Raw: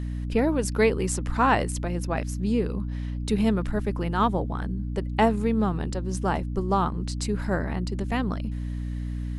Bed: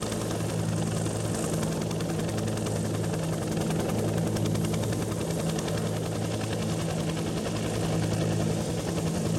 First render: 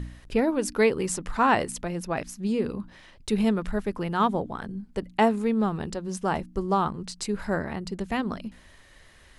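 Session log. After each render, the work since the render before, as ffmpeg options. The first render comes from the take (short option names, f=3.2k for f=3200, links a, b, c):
-af "bandreject=f=60:t=h:w=4,bandreject=f=120:t=h:w=4,bandreject=f=180:t=h:w=4,bandreject=f=240:t=h:w=4,bandreject=f=300:t=h:w=4"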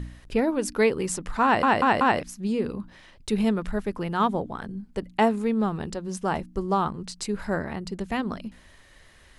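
-filter_complex "[0:a]asplit=5[a][b][c][d][e];[a]atrim=end=1.632[f];[b]atrim=start=1.438:end=1.632[g];[c]atrim=start=1.438:end=1.632[h];[d]atrim=start=1.438:end=1.632[i];[e]atrim=start=2.198[j];[f][g]acrossfade=d=0.004:c1=hsin:c2=hsin[k];[k][h]acrossfade=d=0.004:c1=hsin:c2=hsin[l];[l][i]acrossfade=d=0.004:c1=hsin:c2=hsin[m];[m][j]acrossfade=d=0.004:c1=hsin:c2=hsin"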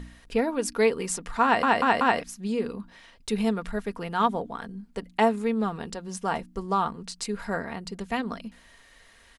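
-af "lowshelf=f=340:g=-7.5,aecho=1:1:4.3:0.4"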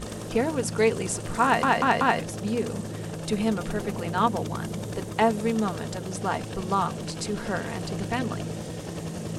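-filter_complex "[1:a]volume=-5.5dB[a];[0:a][a]amix=inputs=2:normalize=0"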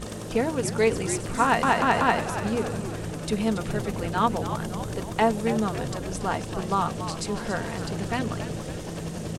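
-filter_complex "[0:a]asplit=8[a][b][c][d][e][f][g][h];[b]adelay=280,afreqshift=-85,volume=-10.5dB[i];[c]adelay=560,afreqshift=-170,volume=-15.4dB[j];[d]adelay=840,afreqshift=-255,volume=-20.3dB[k];[e]adelay=1120,afreqshift=-340,volume=-25.1dB[l];[f]adelay=1400,afreqshift=-425,volume=-30dB[m];[g]adelay=1680,afreqshift=-510,volume=-34.9dB[n];[h]adelay=1960,afreqshift=-595,volume=-39.8dB[o];[a][i][j][k][l][m][n][o]amix=inputs=8:normalize=0"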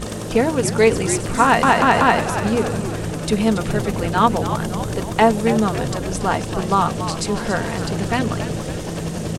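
-af "volume=7.5dB,alimiter=limit=-2dB:level=0:latency=1"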